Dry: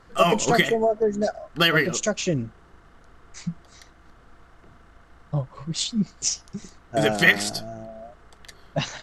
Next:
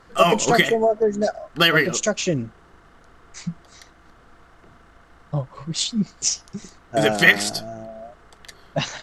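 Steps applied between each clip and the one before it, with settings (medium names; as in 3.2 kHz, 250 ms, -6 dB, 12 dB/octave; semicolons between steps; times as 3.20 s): bass shelf 140 Hz -5 dB; trim +3 dB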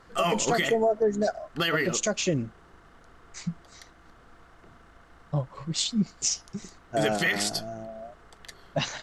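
peak limiter -12.5 dBFS, peak gain reduction 11 dB; trim -3 dB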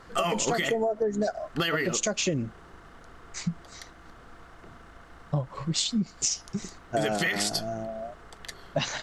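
compression 6:1, threshold -28 dBFS, peak gain reduction 8.5 dB; trim +4.5 dB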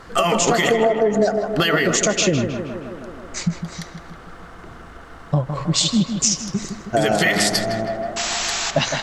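painted sound noise, 8.16–8.71 s, 690–7900 Hz -33 dBFS; tape echo 158 ms, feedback 78%, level -6 dB, low-pass 2.3 kHz; trim +8.5 dB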